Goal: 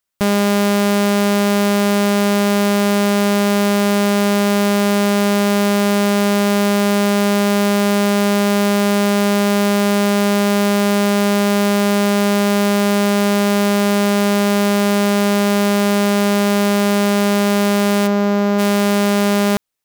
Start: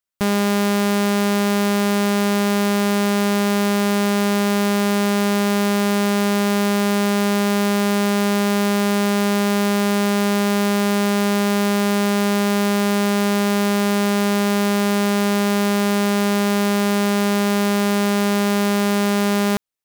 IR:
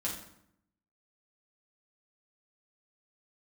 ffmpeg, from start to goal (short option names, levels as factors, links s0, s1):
-filter_complex "[0:a]asplit=3[s0][s1][s2];[s0]afade=t=out:st=18.06:d=0.02[s3];[s1]lowpass=f=1500:p=1,afade=t=in:st=18.06:d=0.02,afade=t=out:st=18.58:d=0.02[s4];[s2]afade=t=in:st=18.58:d=0.02[s5];[s3][s4][s5]amix=inputs=3:normalize=0,asplit=2[s6][s7];[s7]aeval=exprs='0.0355*(abs(mod(val(0)/0.0355+3,4)-2)-1)':c=same,volume=0.708[s8];[s6][s8]amix=inputs=2:normalize=0,volume=1.41"